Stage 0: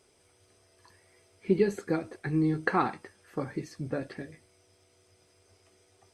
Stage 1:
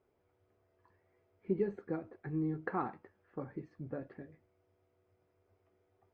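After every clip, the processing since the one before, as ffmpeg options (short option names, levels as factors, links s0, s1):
-af "lowpass=1400,volume=0.376"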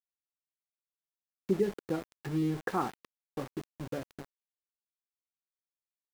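-af "aeval=exprs='val(0)*gte(abs(val(0)),0.00631)':c=same,volume=1.68"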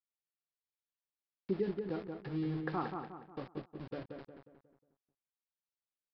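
-filter_complex "[0:a]asplit=2[s0][s1];[s1]adelay=180,lowpass=f=2100:p=1,volume=0.562,asplit=2[s2][s3];[s3]adelay=180,lowpass=f=2100:p=1,volume=0.43,asplit=2[s4][s5];[s5]adelay=180,lowpass=f=2100:p=1,volume=0.43,asplit=2[s6][s7];[s7]adelay=180,lowpass=f=2100:p=1,volume=0.43,asplit=2[s8][s9];[s9]adelay=180,lowpass=f=2100:p=1,volume=0.43[s10];[s2][s4][s6][s8][s10]amix=inputs=5:normalize=0[s11];[s0][s11]amix=inputs=2:normalize=0,aresample=11025,aresample=44100,volume=0.501"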